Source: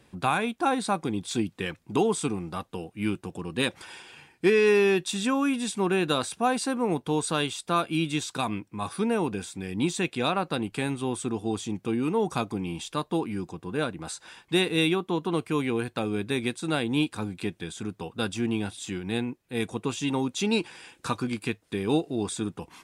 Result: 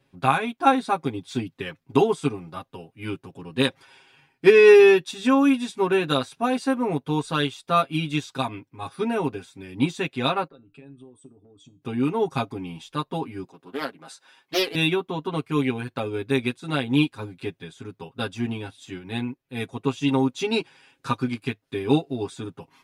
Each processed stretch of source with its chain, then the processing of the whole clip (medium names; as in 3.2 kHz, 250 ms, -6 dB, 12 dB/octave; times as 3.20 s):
10.47–11.82 s: resonances exaggerated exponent 2 + compression 16:1, threshold -32 dBFS + feedback comb 150 Hz, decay 0.27 s
13.44–14.75 s: high-pass 260 Hz + treble shelf 7.7 kHz +3.5 dB + loudspeaker Doppler distortion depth 0.36 ms
whole clip: peaking EQ 8.3 kHz -8 dB 0.77 oct; comb 7.4 ms, depth 96%; upward expansion 1.5:1, over -42 dBFS; trim +4.5 dB